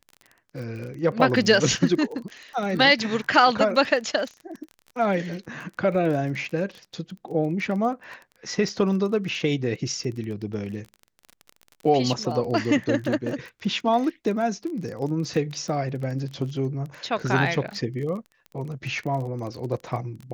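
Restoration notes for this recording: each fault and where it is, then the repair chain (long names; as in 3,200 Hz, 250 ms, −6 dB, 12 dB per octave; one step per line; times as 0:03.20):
surface crackle 23 per second −32 dBFS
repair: click removal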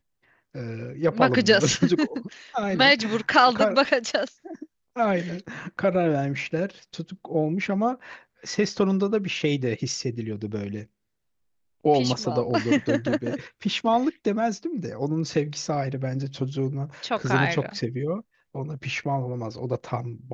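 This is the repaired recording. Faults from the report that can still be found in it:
none of them is left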